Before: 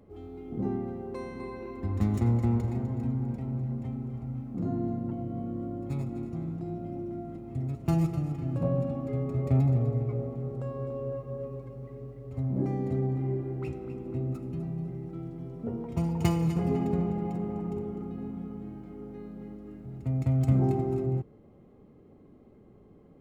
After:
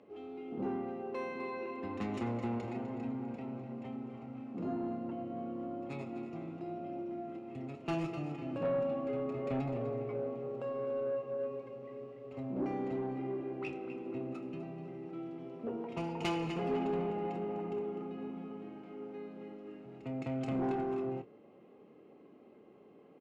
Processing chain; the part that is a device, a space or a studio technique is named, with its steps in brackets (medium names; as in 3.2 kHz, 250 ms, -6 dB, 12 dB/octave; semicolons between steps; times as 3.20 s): intercom (band-pass 320–4600 Hz; peaking EQ 2.7 kHz +9 dB 0.33 oct; saturation -29 dBFS, distortion -17 dB; doubling 27 ms -11.5 dB); trim +1 dB